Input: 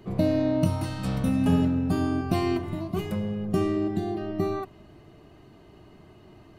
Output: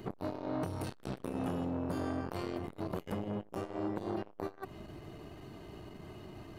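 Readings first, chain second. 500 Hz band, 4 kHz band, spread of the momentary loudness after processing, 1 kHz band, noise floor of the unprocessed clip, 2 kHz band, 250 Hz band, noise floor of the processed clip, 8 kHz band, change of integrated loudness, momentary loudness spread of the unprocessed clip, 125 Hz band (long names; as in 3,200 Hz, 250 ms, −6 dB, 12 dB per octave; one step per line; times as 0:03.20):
−10.0 dB, −11.5 dB, 13 LU, −7.5 dB, −52 dBFS, −9.0 dB, −13.0 dB, −56 dBFS, can't be measured, −13.0 dB, 8 LU, −13.5 dB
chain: downward compressor 10 to 1, threshold −32 dBFS, peak gain reduction 15.5 dB
high-shelf EQ 7,900 Hz +4.5 dB
saturating transformer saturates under 940 Hz
level +3.5 dB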